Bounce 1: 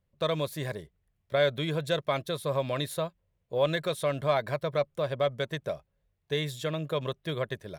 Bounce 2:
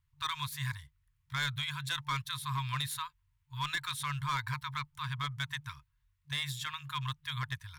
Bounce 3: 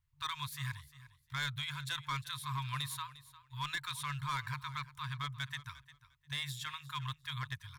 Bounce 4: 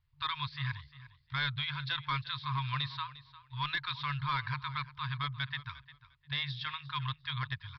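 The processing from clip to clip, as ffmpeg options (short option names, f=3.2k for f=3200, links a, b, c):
-af "afftfilt=real='re*(1-between(b*sr/4096,150,900))':imag='im*(1-between(b*sr/4096,150,900))':win_size=4096:overlap=0.75,asoftclip=type=hard:threshold=-28.5dB,volume=1dB"
-af "aecho=1:1:352|704:0.141|0.0268,volume=-3.5dB"
-af "aresample=11025,aresample=44100,volume=4dB"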